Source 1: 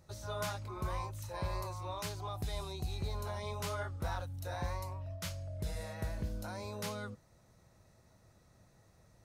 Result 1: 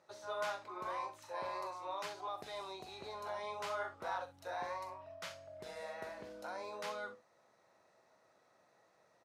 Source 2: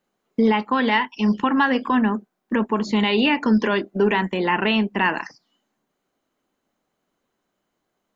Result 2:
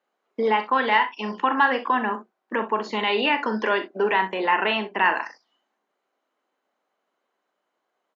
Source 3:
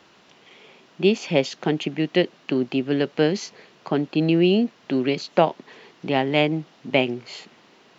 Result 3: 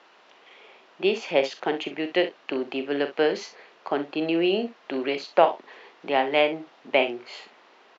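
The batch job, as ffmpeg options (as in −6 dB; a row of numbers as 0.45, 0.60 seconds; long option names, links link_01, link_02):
-af "highpass=520,aemphasis=mode=reproduction:type=75fm,aecho=1:1:42|64:0.282|0.2,volume=1.5dB"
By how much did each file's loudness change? −3.0, −2.0, −3.0 LU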